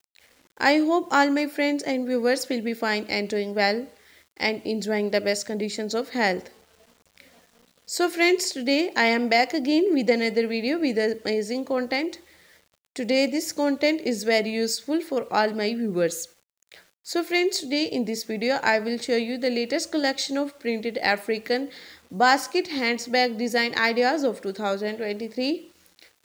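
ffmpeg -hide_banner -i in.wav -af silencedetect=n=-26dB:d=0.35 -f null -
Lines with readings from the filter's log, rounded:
silence_start: 0.00
silence_end: 0.60 | silence_duration: 0.60
silence_start: 3.81
silence_end: 4.40 | silence_duration: 0.59
silence_start: 6.39
silence_end: 7.90 | silence_duration: 1.51
silence_start: 12.14
silence_end: 12.96 | silence_duration: 0.83
silence_start: 16.23
silence_end: 17.09 | silence_duration: 0.86
silence_start: 21.65
silence_end: 22.20 | silence_duration: 0.55
silence_start: 25.55
silence_end: 26.24 | silence_duration: 0.69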